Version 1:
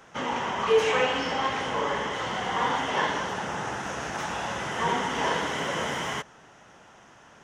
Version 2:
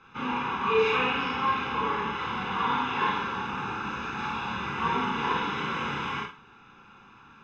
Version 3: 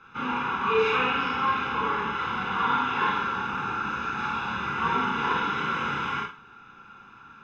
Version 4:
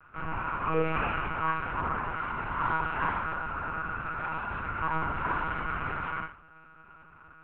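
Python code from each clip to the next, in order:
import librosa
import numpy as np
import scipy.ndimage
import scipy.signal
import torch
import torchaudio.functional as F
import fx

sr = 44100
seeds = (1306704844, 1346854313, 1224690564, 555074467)

y1 = fx.ladder_lowpass(x, sr, hz=4300.0, resonance_pct=25)
y1 = y1 + 0.96 * np.pad(y1, (int(0.8 * sr / 1000.0), 0))[:len(y1)]
y1 = fx.rev_schroeder(y1, sr, rt60_s=0.33, comb_ms=28, drr_db=-2.0)
y1 = F.gain(torch.from_numpy(y1), -1.5).numpy()
y2 = fx.peak_eq(y1, sr, hz=1400.0, db=9.0, octaves=0.2)
y3 = scipy.signal.sosfilt(scipy.signal.butter(4, 2300.0, 'lowpass', fs=sr, output='sos'), y2)
y3 = fx.lpc_monotone(y3, sr, seeds[0], pitch_hz=160.0, order=10)
y3 = F.gain(torch.from_numpy(y3), -4.0).numpy()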